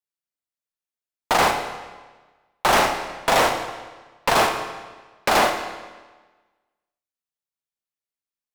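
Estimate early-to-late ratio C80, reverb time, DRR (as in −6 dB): 8.5 dB, 1.3 s, 5.5 dB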